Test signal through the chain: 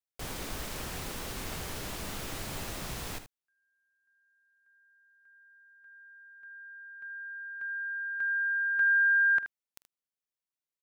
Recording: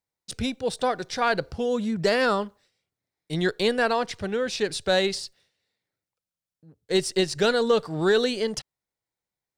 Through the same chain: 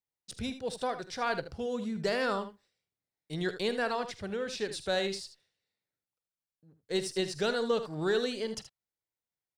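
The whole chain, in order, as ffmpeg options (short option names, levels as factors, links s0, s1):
-af "aecho=1:1:46|77:0.126|0.266,volume=0.376"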